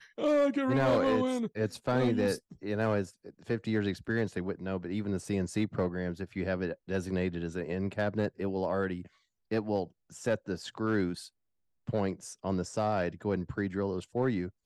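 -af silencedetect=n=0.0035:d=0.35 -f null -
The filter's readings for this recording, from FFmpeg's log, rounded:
silence_start: 9.07
silence_end: 9.51 | silence_duration: 0.44
silence_start: 11.28
silence_end: 11.87 | silence_duration: 0.59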